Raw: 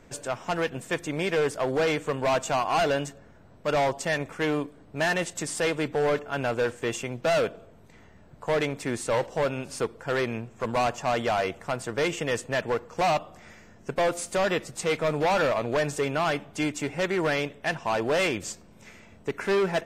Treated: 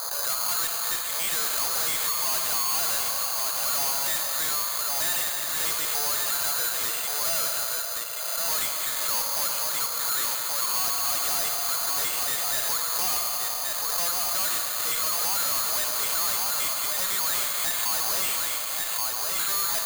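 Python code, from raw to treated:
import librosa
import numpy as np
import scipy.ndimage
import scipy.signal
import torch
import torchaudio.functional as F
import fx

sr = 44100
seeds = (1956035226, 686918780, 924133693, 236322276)

p1 = scipy.signal.sosfilt(scipy.signal.butter(4, 670.0, 'highpass', fs=sr, output='sos'), x)
p2 = fx.env_lowpass(p1, sr, base_hz=1000.0, full_db=-23.5)
p3 = fx.peak_eq(p2, sr, hz=1200.0, db=13.0, octaves=0.6)
p4 = fx.level_steps(p3, sr, step_db=17)
p5 = p3 + F.gain(torch.from_numpy(p4), 2.5).numpy()
p6 = p5 + 10.0 ** (-9.5 / 20.0) * np.pad(p5, (int(1128 * sr / 1000.0), 0))[:len(p5)]
p7 = fx.rev_schroeder(p6, sr, rt60_s=3.0, comb_ms=32, drr_db=8.0)
p8 = fx.tube_stage(p7, sr, drive_db=31.0, bias=0.3)
p9 = (np.kron(p8[::8], np.eye(8)[0]) * 8)[:len(p8)]
p10 = fx.pre_swell(p9, sr, db_per_s=22.0)
y = F.gain(torch.from_numpy(p10), -2.5).numpy()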